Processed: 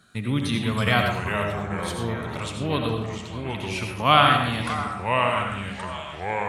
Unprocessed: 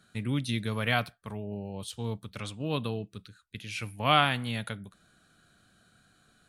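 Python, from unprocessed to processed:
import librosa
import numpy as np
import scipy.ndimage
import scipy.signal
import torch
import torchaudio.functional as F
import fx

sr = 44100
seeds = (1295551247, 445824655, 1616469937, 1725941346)

y = fx.peak_eq(x, sr, hz=1100.0, db=4.5, octaves=0.42)
y = fx.echo_stepped(y, sr, ms=609, hz=980.0, octaves=0.7, feedback_pct=70, wet_db=-11.5)
y = fx.echo_pitch(y, sr, ms=239, semitones=-3, count=3, db_per_echo=-6.0)
y = fx.rev_freeverb(y, sr, rt60_s=0.81, hf_ratio=0.5, predelay_ms=45, drr_db=3.0)
y = y * librosa.db_to_amplitude(4.5)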